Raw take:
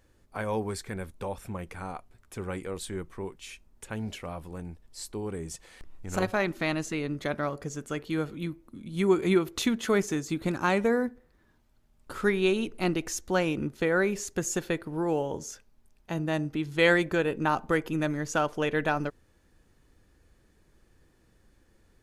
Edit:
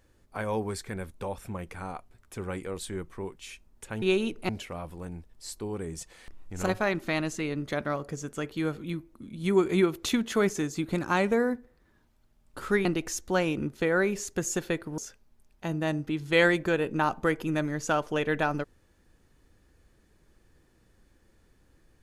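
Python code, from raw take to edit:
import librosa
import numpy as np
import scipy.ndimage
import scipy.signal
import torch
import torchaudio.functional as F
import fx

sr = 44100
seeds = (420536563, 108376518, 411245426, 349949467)

y = fx.edit(x, sr, fx.move(start_s=12.38, length_s=0.47, to_s=4.02),
    fx.cut(start_s=14.98, length_s=0.46), tone=tone)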